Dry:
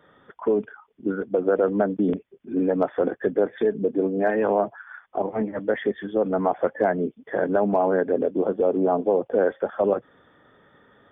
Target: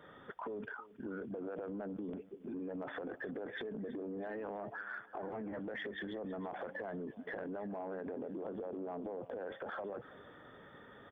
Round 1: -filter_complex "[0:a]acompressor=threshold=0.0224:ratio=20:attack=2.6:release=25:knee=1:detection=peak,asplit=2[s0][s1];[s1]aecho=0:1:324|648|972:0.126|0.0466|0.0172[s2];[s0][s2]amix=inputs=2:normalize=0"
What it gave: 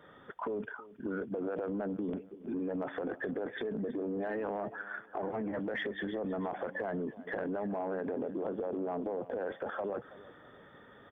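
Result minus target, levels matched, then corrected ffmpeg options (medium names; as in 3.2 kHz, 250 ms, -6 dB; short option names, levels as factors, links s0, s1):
compression: peak gain reduction -6.5 dB
-filter_complex "[0:a]acompressor=threshold=0.01:ratio=20:attack=2.6:release=25:knee=1:detection=peak,asplit=2[s0][s1];[s1]aecho=0:1:324|648|972:0.126|0.0466|0.0172[s2];[s0][s2]amix=inputs=2:normalize=0"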